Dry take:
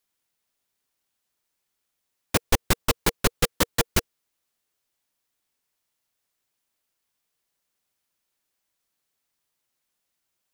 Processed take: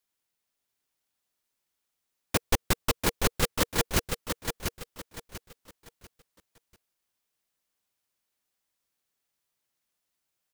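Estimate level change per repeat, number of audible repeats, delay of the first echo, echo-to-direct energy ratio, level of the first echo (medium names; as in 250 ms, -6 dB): -10.0 dB, 3, 692 ms, -5.5 dB, -6.0 dB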